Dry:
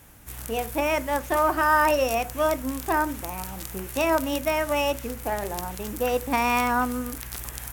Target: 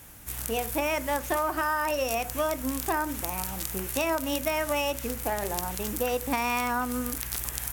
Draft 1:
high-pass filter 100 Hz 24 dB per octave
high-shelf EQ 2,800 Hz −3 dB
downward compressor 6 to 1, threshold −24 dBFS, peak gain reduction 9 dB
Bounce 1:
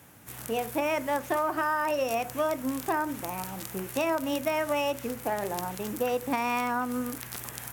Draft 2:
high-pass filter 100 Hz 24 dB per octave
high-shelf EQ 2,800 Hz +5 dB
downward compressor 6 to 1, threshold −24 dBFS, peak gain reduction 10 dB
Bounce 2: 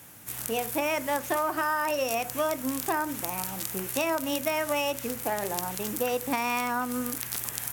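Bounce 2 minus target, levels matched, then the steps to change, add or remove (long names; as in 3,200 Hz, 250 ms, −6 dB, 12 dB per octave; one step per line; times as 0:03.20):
125 Hz band −4.0 dB
remove: high-pass filter 100 Hz 24 dB per octave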